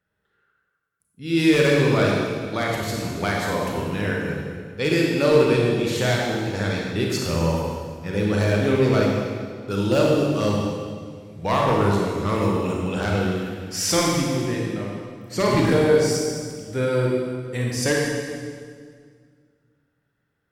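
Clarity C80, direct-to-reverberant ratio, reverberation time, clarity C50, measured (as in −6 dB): 1.5 dB, −2.5 dB, 1.9 s, −0.5 dB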